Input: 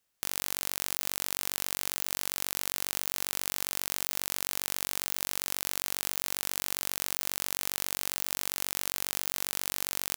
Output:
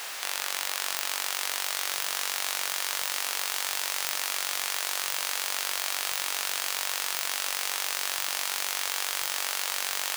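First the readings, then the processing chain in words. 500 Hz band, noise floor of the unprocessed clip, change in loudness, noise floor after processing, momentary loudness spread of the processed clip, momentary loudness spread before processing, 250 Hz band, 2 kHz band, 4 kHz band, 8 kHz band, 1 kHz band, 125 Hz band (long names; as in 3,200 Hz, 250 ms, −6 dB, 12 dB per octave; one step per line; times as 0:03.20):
+2.5 dB, −78 dBFS, +3.0 dB, −34 dBFS, 0 LU, 0 LU, −8.0 dB, +7.5 dB, +6.5 dB, +3.5 dB, +7.5 dB, below −15 dB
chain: converter with a step at zero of −31 dBFS
high-pass filter 730 Hz 12 dB per octave
high-shelf EQ 6,200 Hz −12 dB
on a send: delay with a high-pass on its return 276 ms, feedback 84%, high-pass 4,200 Hz, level −7 dB
on the sum: level +7 dB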